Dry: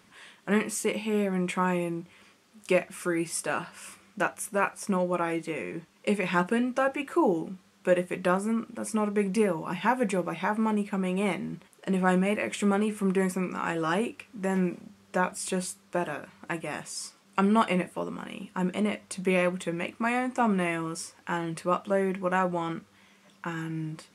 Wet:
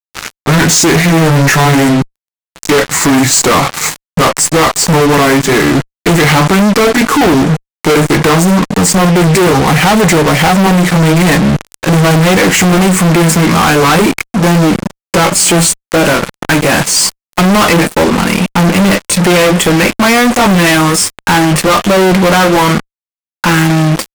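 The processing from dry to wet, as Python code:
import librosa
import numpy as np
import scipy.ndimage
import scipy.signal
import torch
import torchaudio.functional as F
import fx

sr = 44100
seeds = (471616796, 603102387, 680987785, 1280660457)

y = fx.pitch_glide(x, sr, semitones=-4.5, runs='ending unshifted')
y = fx.fuzz(y, sr, gain_db=48.0, gate_db=-46.0)
y = F.gain(torch.from_numpy(y), 7.0).numpy()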